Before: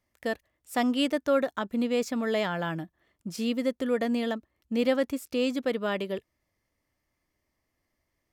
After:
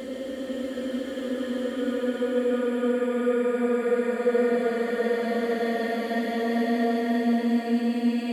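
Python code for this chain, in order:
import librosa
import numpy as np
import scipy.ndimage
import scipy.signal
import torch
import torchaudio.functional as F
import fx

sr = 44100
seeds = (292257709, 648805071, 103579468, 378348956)

y = fx.paulstretch(x, sr, seeds[0], factor=23.0, window_s=0.25, from_s=3.77)
y = fx.hum_notches(y, sr, base_hz=50, count=5)
y = y * 10.0 ** (2.0 / 20.0)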